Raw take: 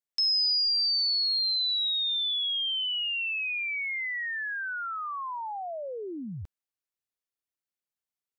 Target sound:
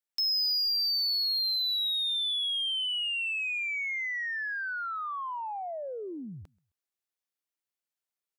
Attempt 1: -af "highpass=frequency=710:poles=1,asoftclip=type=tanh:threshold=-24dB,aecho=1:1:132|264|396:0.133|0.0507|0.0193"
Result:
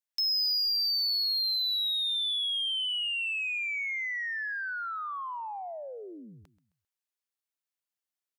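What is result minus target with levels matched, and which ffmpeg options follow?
echo-to-direct +10.5 dB; 250 Hz band −6.5 dB
-af "highpass=frequency=220:poles=1,asoftclip=type=tanh:threshold=-24dB,aecho=1:1:132|264:0.0398|0.0151"

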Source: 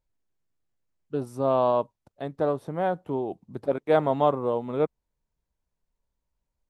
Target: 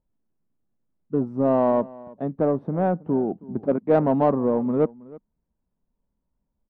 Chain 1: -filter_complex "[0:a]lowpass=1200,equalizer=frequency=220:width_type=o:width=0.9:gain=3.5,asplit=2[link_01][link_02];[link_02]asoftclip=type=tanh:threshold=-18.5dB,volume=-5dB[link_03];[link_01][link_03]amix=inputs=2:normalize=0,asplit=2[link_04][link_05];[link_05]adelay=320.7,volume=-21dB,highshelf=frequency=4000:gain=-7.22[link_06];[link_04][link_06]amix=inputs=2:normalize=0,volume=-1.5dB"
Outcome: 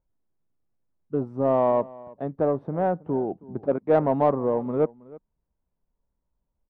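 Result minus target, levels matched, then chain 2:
250 Hz band −3.0 dB
-filter_complex "[0:a]lowpass=1200,equalizer=frequency=220:width_type=o:width=0.9:gain=11.5,asplit=2[link_01][link_02];[link_02]asoftclip=type=tanh:threshold=-18.5dB,volume=-5dB[link_03];[link_01][link_03]amix=inputs=2:normalize=0,asplit=2[link_04][link_05];[link_05]adelay=320.7,volume=-21dB,highshelf=frequency=4000:gain=-7.22[link_06];[link_04][link_06]amix=inputs=2:normalize=0,volume=-1.5dB"

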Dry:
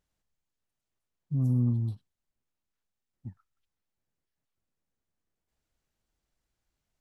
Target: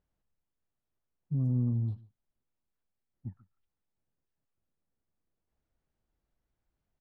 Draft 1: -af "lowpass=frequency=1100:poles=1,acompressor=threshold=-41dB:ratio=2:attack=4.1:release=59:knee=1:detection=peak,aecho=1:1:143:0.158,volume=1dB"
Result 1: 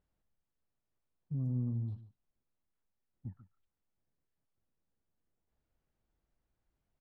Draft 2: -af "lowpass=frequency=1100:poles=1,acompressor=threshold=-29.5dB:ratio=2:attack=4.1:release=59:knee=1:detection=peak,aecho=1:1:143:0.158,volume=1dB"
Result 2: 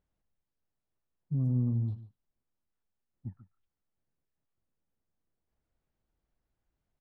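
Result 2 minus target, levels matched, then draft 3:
echo-to-direct +6.5 dB
-af "lowpass=frequency=1100:poles=1,acompressor=threshold=-29.5dB:ratio=2:attack=4.1:release=59:knee=1:detection=peak,aecho=1:1:143:0.075,volume=1dB"

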